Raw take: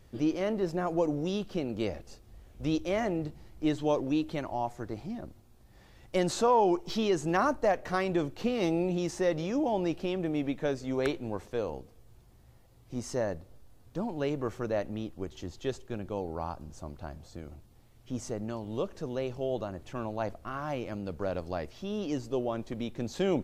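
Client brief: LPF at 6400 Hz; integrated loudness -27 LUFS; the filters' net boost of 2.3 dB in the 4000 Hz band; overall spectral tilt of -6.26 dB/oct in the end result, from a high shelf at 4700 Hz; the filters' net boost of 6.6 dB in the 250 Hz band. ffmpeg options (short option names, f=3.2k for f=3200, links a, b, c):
-af "lowpass=6.4k,equalizer=f=250:t=o:g=9,equalizer=f=4k:t=o:g=7,highshelf=f=4.7k:g=-7.5,volume=1dB"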